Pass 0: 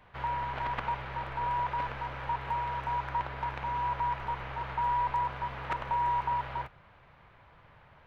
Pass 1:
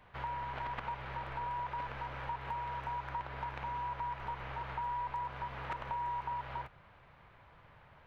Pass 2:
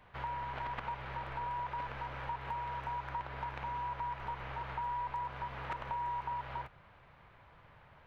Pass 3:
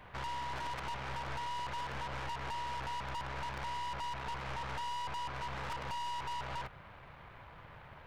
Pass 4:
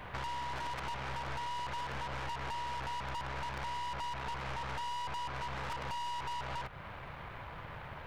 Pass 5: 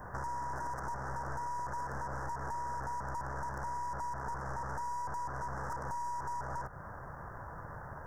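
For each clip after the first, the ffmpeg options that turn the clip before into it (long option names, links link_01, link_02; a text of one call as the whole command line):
ffmpeg -i in.wav -af "acompressor=threshold=-36dB:ratio=2.5,volume=-2dB" out.wav
ffmpeg -i in.wav -af anull out.wav
ffmpeg -i in.wav -af "aeval=exprs='(tanh(224*val(0)+0.55)-tanh(0.55))/224':channel_layout=same,volume=9dB" out.wav
ffmpeg -i in.wav -af "acompressor=threshold=-47dB:ratio=2.5,volume=7.5dB" out.wav
ffmpeg -i in.wav -af "asuperstop=centerf=3100:order=12:qfactor=0.84,volume=1dB" out.wav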